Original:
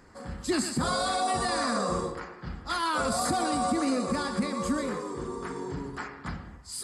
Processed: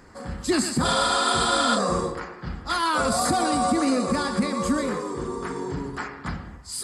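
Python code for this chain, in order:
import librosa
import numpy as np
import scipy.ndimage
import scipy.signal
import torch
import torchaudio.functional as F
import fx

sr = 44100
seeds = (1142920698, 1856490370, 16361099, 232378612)

y = fx.spec_repair(x, sr, seeds[0], start_s=0.9, length_s=0.86, low_hz=670.0, high_hz=7800.0, source='before')
y = fx.peak_eq(y, sr, hz=2800.0, db=8.0, octaves=1.4, at=(0.85, 1.75))
y = y * librosa.db_to_amplitude(5.0)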